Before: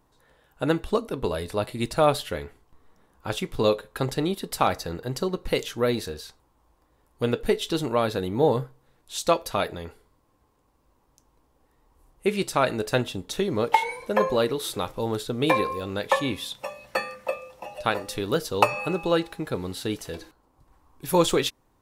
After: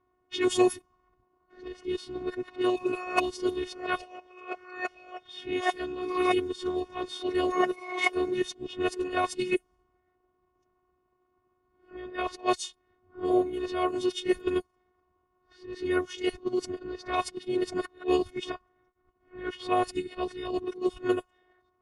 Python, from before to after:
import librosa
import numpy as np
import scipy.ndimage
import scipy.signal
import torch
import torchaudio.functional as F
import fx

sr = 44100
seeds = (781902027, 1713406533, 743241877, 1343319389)

y = np.flip(x).copy()
y = fx.pitch_keep_formants(y, sr, semitones=-6.0)
y = fx.robotise(y, sr, hz=364.0)
y = fx.notch_comb(y, sr, f0_hz=800.0)
y = fx.env_lowpass(y, sr, base_hz=2000.0, full_db=-22.5)